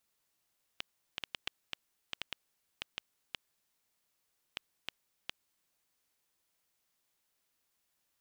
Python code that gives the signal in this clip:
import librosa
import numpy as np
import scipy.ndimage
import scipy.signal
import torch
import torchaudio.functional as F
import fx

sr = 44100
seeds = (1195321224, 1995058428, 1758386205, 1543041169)

y = fx.geiger_clicks(sr, seeds[0], length_s=4.95, per_s=3.2, level_db=-18.5)